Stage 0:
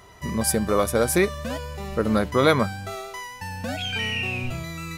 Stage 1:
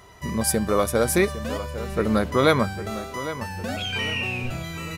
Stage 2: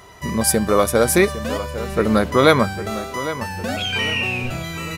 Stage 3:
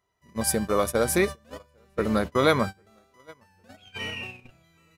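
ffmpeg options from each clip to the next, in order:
-filter_complex "[0:a]asplit=2[s0][s1];[s1]adelay=805,lowpass=f=2300:p=1,volume=0.237,asplit=2[s2][s3];[s3]adelay=805,lowpass=f=2300:p=1,volume=0.49,asplit=2[s4][s5];[s5]adelay=805,lowpass=f=2300:p=1,volume=0.49,asplit=2[s6][s7];[s7]adelay=805,lowpass=f=2300:p=1,volume=0.49,asplit=2[s8][s9];[s9]adelay=805,lowpass=f=2300:p=1,volume=0.49[s10];[s0][s2][s4][s6][s8][s10]amix=inputs=6:normalize=0"
-af "lowshelf=f=140:g=-4,volume=1.88"
-af "agate=range=0.0562:threshold=0.1:ratio=16:detection=peak,volume=0.422"

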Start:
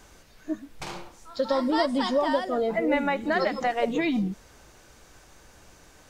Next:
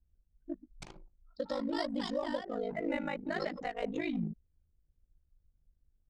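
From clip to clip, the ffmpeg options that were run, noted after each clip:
-af "anlmdn=10,equalizer=f=125:t=o:w=1:g=5,equalizer=f=1000:t=o:w=1:g=-5,equalizer=f=8000:t=o:w=1:g=6,aeval=exprs='val(0)*sin(2*PI*26*n/s)':c=same,volume=0.447"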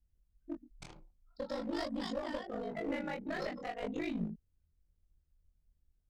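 -af "aeval=exprs='clip(val(0),-1,0.0251)':c=same,flanger=delay=22.5:depth=3.2:speed=0.47,volume=1.12"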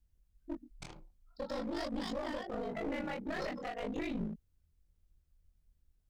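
-af "alimiter=level_in=2:limit=0.0631:level=0:latency=1:release=26,volume=0.501,aeval=exprs='clip(val(0),-1,0.00891)':c=same,volume=1.33"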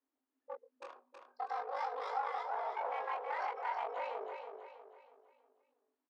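-filter_complex "[0:a]bandpass=f=830:t=q:w=1.2:csg=0,afreqshift=220,asplit=2[s0][s1];[s1]aecho=0:1:322|644|966|1288|1610:0.501|0.205|0.0842|0.0345|0.0142[s2];[s0][s2]amix=inputs=2:normalize=0,volume=1.58"

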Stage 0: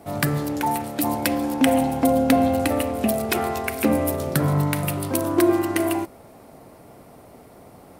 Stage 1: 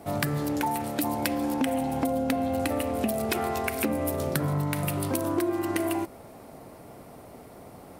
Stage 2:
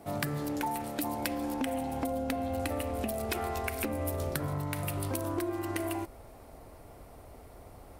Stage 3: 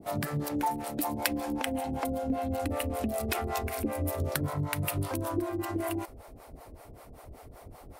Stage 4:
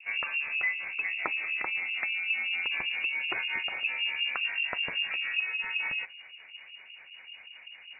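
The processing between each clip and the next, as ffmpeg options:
-af "acompressor=threshold=0.0631:ratio=6"
-af "asubboost=boost=10.5:cutoff=54,volume=0.562"
-filter_complex "[0:a]acrossover=split=450[s0][s1];[s0]aeval=exprs='val(0)*(1-1/2+1/2*cos(2*PI*5.2*n/s))':c=same[s2];[s1]aeval=exprs='val(0)*(1-1/2-1/2*cos(2*PI*5.2*n/s))':c=same[s3];[s2][s3]amix=inputs=2:normalize=0,volume=2.11"
-af "lowpass=f=2500:t=q:w=0.5098,lowpass=f=2500:t=q:w=0.6013,lowpass=f=2500:t=q:w=0.9,lowpass=f=2500:t=q:w=2.563,afreqshift=-2900"

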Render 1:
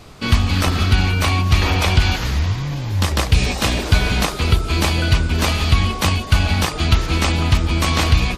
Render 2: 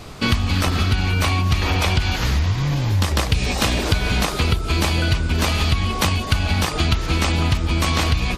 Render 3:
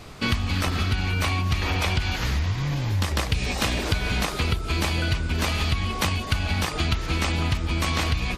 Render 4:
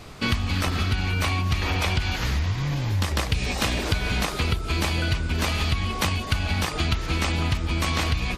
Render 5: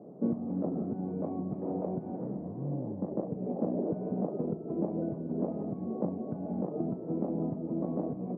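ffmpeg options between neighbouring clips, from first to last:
-af "acompressor=threshold=0.1:ratio=6,volume=1.68"
-af "equalizer=f=2000:w=1.5:g=2.5,volume=0.531"
-af anull
-af "asuperpass=centerf=330:order=8:qfactor=0.68"

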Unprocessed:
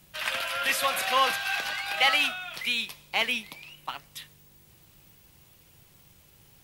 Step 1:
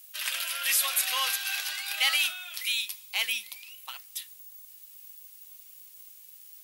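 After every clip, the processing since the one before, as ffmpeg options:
-af "aderivative,volume=2.11"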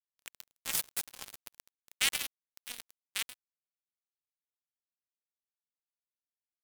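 -af "acrusher=bits=2:mix=0:aa=0.5"

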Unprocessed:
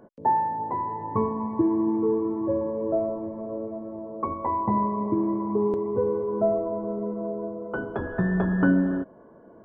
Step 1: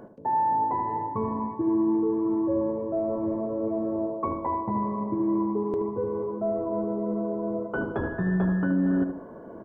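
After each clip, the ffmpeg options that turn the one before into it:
-filter_complex "[0:a]areverse,acompressor=threshold=0.0224:ratio=6,areverse,asplit=2[s0][s1];[s1]adelay=76,lowpass=f=1300:p=1,volume=0.473,asplit=2[s2][s3];[s3]adelay=76,lowpass=f=1300:p=1,volume=0.4,asplit=2[s4][s5];[s5]adelay=76,lowpass=f=1300:p=1,volume=0.4,asplit=2[s6][s7];[s7]adelay=76,lowpass=f=1300:p=1,volume=0.4,asplit=2[s8][s9];[s9]adelay=76,lowpass=f=1300:p=1,volume=0.4[s10];[s0][s2][s4][s6][s8][s10]amix=inputs=6:normalize=0,volume=2.37"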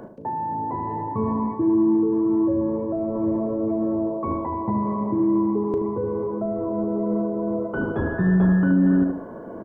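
-filter_complex "[0:a]acrossover=split=320[s0][s1];[s1]alimiter=level_in=1.68:limit=0.0631:level=0:latency=1:release=21,volume=0.596[s2];[s0][s2]amix=inputs=2:normalize=0,asplit=2[s3][s4];[s4]adelay=37,volume=0.237[s5];[s3][s5]amix=inputs=2:normalize=0,volume=2"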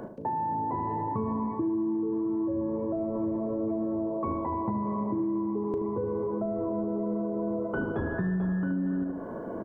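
-af "acompressor=threshold=0.0447:ratio=6"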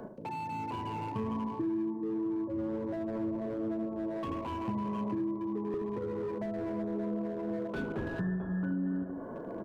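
-filter_complex "[0:a]flanger=delay=4.4:depth=6.1:regen=-64:speed=0.51:shape=triangular,acrossover=split=360[s0][s1];[s1]asoftclip=type=hard:threshold=0.0141[s2];[s0][s2]amix=inputs=2:normalize=0"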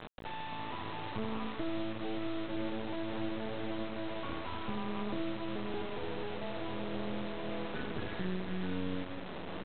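-af "aresample=8000,acrusher=bits=4:dc=4:mix=0:aa=0.000001,aresample=44100,aecho=1:1:900:0.224"

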